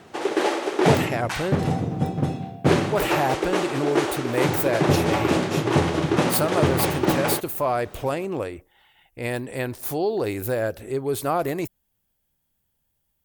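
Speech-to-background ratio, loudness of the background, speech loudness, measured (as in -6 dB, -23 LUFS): -3.0 dB, -23.5 LUFS, -26.5 LUFS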